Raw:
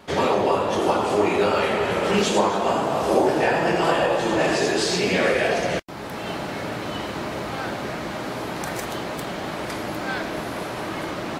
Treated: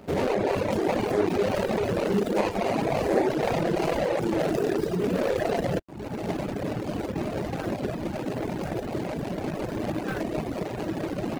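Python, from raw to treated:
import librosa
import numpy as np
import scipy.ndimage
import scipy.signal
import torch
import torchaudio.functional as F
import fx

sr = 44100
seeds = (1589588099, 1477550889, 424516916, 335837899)

p1 = scipy.ndimage.median_filter(x, 41, mode='constant')
p2 = fx.dereverb_blind(p1, sr, rt60_s=1.1)
p3 = fx.over_compress(p2, sr, threshold_db=-30.0, ratio=-0.5)
p4 = p2 + F.gain(torch.from_numpy(p3), -2.0).numpy()
y = F.gain(torch.from_numpy(p4), -1.5).numpy()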